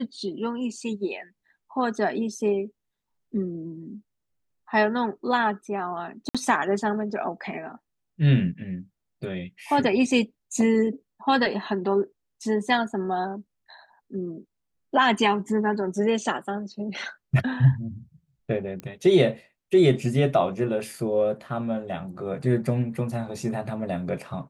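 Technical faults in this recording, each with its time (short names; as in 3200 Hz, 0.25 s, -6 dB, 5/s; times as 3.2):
6.29–6.35 gap 56 ms
18.8 pop -21 dBFS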